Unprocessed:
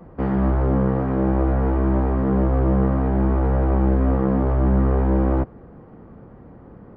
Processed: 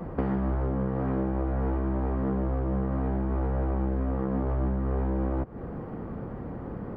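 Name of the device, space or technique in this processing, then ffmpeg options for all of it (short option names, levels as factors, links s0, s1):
serial compression, peaks first: -af "acompressor=threshold=0.0447:ratio=6,acompressor=threshold=0.0178:ratio=2,volume=2.24"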